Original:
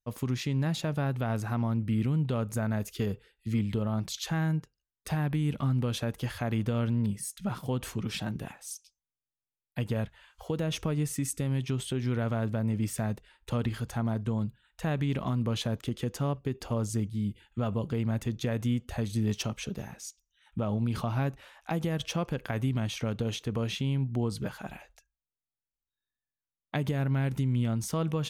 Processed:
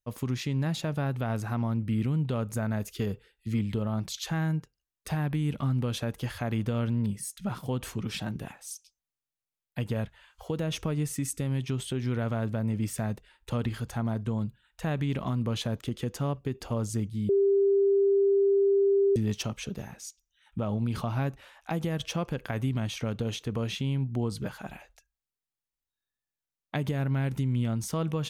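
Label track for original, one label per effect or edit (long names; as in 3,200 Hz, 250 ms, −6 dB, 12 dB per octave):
17.290000	19.160000	beep over 396 Hz −19.5 dBFS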